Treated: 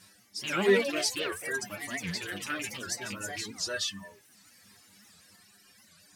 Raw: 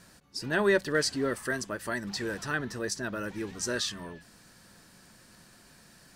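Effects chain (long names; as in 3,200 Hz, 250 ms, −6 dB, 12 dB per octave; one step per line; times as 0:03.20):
loose part that buzzes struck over −37 dBFS, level −22 dBFS
high-pass filter 46 Hz
high-shelf EQ 3,200 Hz +9 dB
harmonic and percussive parts rebalanced harmonic +5 dB
parametric band 2,500 Hz +4 dB 1.5 octaves
stiff-string resonator 98 Hz, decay 0.25 s, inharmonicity 0.002
reverb reduction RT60 1 s
delay with pitch and tempo change per echo 184 ms, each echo +3 semitones, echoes 3, each echo −6 dB
wow of a warped record 78 rpm, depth 250 cents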